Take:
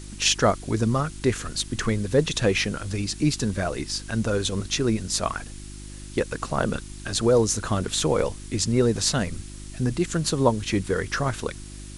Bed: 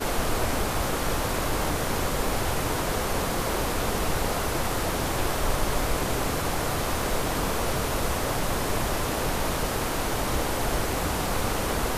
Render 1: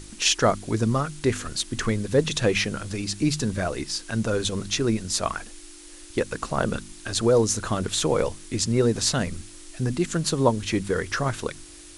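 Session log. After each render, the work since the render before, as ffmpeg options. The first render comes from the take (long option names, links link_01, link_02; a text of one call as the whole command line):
ffmpeg -i in.wav -af "bandreject=frequency=50:width_type=h:width=4,bandreject=frequency=100:width_type=h:width=4,bandreject=frequency=150:width_type=h:width=4,bandreject=frequency=200:width_type=h:width=4,bandreject=frequency=250:width_type=h:width=4" out.wav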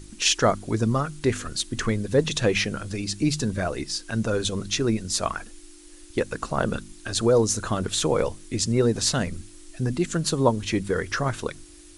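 ffmpeg -i in.wav -af "afftdn=noise_reduction=6:noise_floor=-45" out.wav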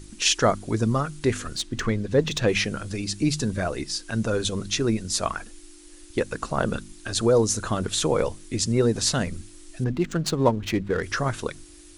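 ffmpeg -i in.wav -filter_complex "[0:a]asettb=1/sr,asplit=3[link_01][link_02][link_03];[link_01]atrim=end=1.564[link_04];[link_02]atrim=start=1.56:end=2.48,asetpts=PTS-STARTPTS,afade=type=in:duration=0.004:curve=qsin,afade=type=out:start_time=0.916:duration=0.004:curve=qsin,adynamicsmooth=sensitivity=2:basefreq=6000[link_05];[link_03]atrim=start=2.476[link_06];[link_04][link_05]acrossfade=duration=0.004:curve1=hsin:curve2=qsin[link_07];[link_07][link_06]acrossfade=duration=0.004:curve1=qsin:curve2=hsin,asettb=1/sr,asplit=3[link_08][link_09][link_10];[link_08]atrim=end=9.844[link_11];[link_09]atrim=start=9.84:end=11.03,asetpts=PTS-STARTPTS,afade=type=in:duration=0.004:curve=qsin,afade=type=out:start_time=1.186:duration=0.004:curve=qsin,adynamicsmooth=sensitivity=5.5:basefreq=1700[link_12];[link_10]atrim=start=11.026[link_13];[link_11][link_12]acrossfade=duration=0.004:curve1=hsin:curve2=qsin[link_14];[link_14][link_13]acrossfade=duration=0.004:curve1=qsin:curve2=hsin" out.wav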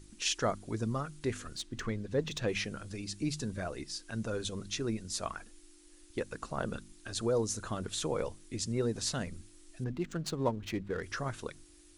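ffmpeg -i in.wav -af "volume=-11dB" out.wav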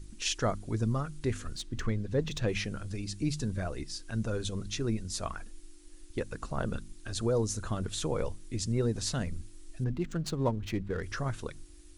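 ffmpeg -i in.wav -af "lowshelf=frequency=120:gain=12" out.wav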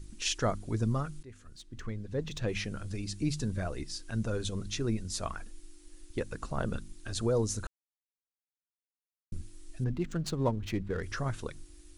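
ffmpeg -i in.wav -filter_complex "[0:a]asplit=4[link_01][link_02][link_03][link_04];[link_01]atrim=end=1.23,asetpts=PTS-STARTPTS,afade=type=out:start_time=1.226:duration=0.004:curve=hsin:silence=0.0841395[link_05];[link_02]atrim=start=1.23:end=7.67,asetpts=PTS-STARTPTS,afade=type=in:duration=1.68:silence=0.0841395,afade=type=out:start_time=6.436:duration=0.004:curve=hsin[link_06];[link_03]atrim=start=7.67:end=9.32,asetpts=PTS-STARTPTS,volume=0[link_07];[link_04]atrim=start=9.32,asetpts=PTS-STARTPTS,afade=type=in:duration=0.004:curve=hsin[link_08];[link_05][link_06][link_07][link_08]concat=n=4:v=0:a=1" out.wav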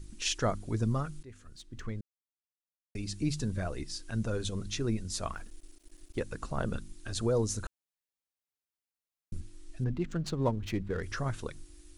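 ffmpeg -i in.wav -filter_complex "[0:a]asettb=1/sr,asplit=3[link_01][link_02][link_03];[link_01]atrim=end=5.334[link_04];[link_02]atrim=start=5.33:end=6.18,asetpts=PTS-STARTPTS,afade=type=in:duration=0.004:curve=qsin,afade=type=out:start_time=0.846:duration=0.004:curve=qsin,aeval=exprs='sgn(val(0))*max(abs(val(0))-0.00158,0)':channel_layout=same[link_05];[link_03]atrim=start=6.176[link_06];[link_04][link_05]acrossfade=duration=0.004:curve1=hsin:curve2=qsin[link_07];[link_07][link_06]acrossfade=duration=0.004:curve1=qsin:curve2=hsin,asettb=1/sr,asplit=3[link_08][link_09][link_10];[link_08]atrim=end=9.404[link_11];[link_09]atrim=start=9.4:end=10.43,asetpts=PTS-STARTPTS,afade=type=in:duration=0.004:curve=qsin,afade=type=out:start_time=1.026:duration=0.004:curve=qsin,highshelf=frequency=8800:gain=-9[link_12];[link_10]atrim=start=10.426[link_13];[link_11][link_12]acrossfade=duration=0.004:curve1=hsin:curve2=qsin[link_14];[link_14][link_13]acrossfade=duration=0.004:curve1=qsin:curve2=hsin,asplit=3[link_15][link_16][link_17];[link_15]atrim=end=2.01,asetpts=PTS-STARTPTS,afade=type=out:start_time=2.006:duration=0.004:curve=hsin[link_18];[link_16]atrim=start=2.01:end=2.95,asetpts=PTS-STARTPTS,volume=0[link_19];[link_17]atrim=start=2.95,asetpts=PTS-STARTPTS,afade=type=in:duration=0.004:curve=hsin[link_20];[link_18][link_19][link_20]concat=n=3:v=0:a=1" out.wav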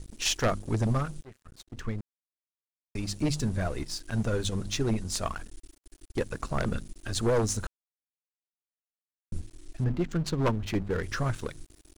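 ffmpeg -i in.wav -af "aeval=exprs='sgn(val(0))*max(abs(val(0))-0.00282,0)':channel_layout=same,aeval=exprs='0.141*(cos(1*acos(clip(val(0)/0.141,-1,1)))-cos(1*PI/2))+0.0562*(cos(2*acos(clip(val(0)/0.141,-1,1)))-cos(2*PI/2))+0.0562*(cos(5*acos(clip(val(0)/0.141,-1,1)))-cos(5*PI/2))+0.0224*(cos(7*acos(clip(val(0)/0.141,-1,1)))-cos(7*PI/2))':channel_layout=same" out.wav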